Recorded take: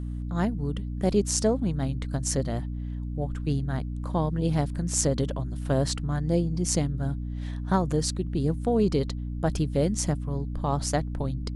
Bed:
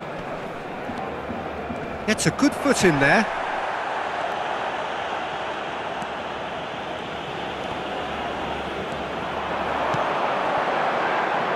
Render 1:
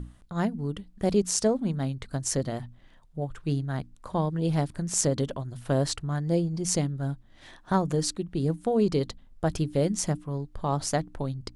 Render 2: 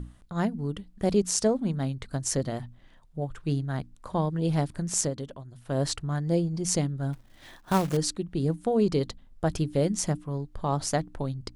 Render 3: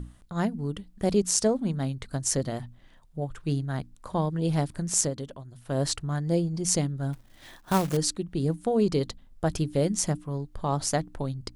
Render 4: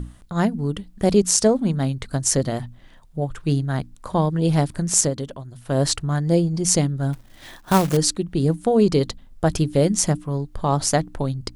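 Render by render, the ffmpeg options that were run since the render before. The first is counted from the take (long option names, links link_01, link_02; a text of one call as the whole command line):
ffmpeg -i in.wav -af "bandreject=frequency=60:width_type=h:width=6,bandreject=frequency=120:width_type=h:width=6,bandreject=frequency=180:width_type=h:width=6,bandreject=frequency=240:width_type=h:width=6,bandreject=frequency=300:width_type=h:width=6" out.wav
ffmpeg -i in.wav -filter_complex "[0:a]asettb=1/sr,asplit=3[link_01][link_02][link_03];[link_01]atrim=end=7.134[link_04];[link_02]atrim=start=7.13:end=7.97,asetpts=PTS-STARTPTS,afade=type=in:duration=0.004:curve=qsin,afade=type=out:start_time=0.836:duration=0.004:curve=qsin,acrusher=bits=3:mode=log:mix=0:aa=0.000001[link_05];[link_03]atrim=start=7.966[link_06];[link_04][link_05]acrossfade=duration=0.004:curve1=hsin:curve2=qsin[link_07];[link_07][link_06]acrossfade=duration=0.004:curve1=qsin:curve2=hsin,asplit=3[link_08][link_09][link_10];[link_08]atrim=end=5.15,asetpts=PTS-STARTPTS,afade=type=out:start_time=4.96:duration=0.19:silence=0.375837[link_11];[link_09]atrim=start=5.15:end=5.66,asetpts=PTS-STARTPTS,volume=-8.5dB[link_12];[link_10]atrim=start=5.66,asetpts=PTS-STARTPTS,afade=type=in:duration=0.19:silence=0.375837[link_13];[link_11][link_12][link_13]concat=n=3:v=0:a=1" out.wav
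ffmpeg -i in.wav -af "highshelf=frequency=6100:gain=4.5" out.wav
ffmpeg -i in.wav -af "volume=7dB,alimiter=limit=-2dB:level=0:latency=1" out.wav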